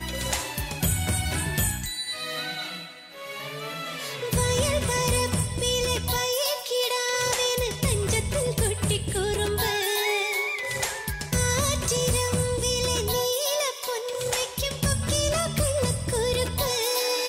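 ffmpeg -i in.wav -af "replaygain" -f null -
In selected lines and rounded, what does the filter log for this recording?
track_gain = +8.1 dB
track_peak = 0.177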